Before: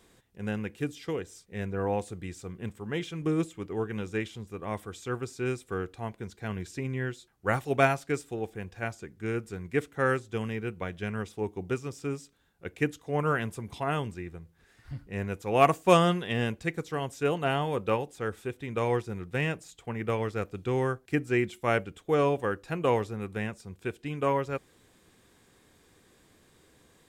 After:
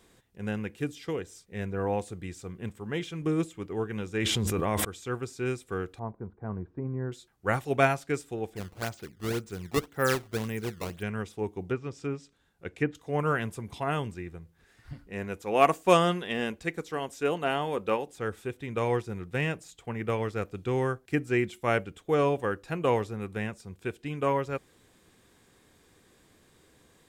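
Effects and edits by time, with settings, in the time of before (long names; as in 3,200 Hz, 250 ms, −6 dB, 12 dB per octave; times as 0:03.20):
0:04.17–0:04.85: envelope flattener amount 100%
0:05.99–0:07.12: Chebyshev low-pass filter 1,100 Hz, order 3
0:08.56–0:11.03: sample-and-hold swept by an LFO 16×, swing 160% 1.9 Hz
0:11.65–0:12.95: treble cut that deepens with the level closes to 2,200 Hz, closed at −26.5 dBFS
0:14.93–0:18.09: parametric band 120 Hz −14.5 dB 0.52 octaves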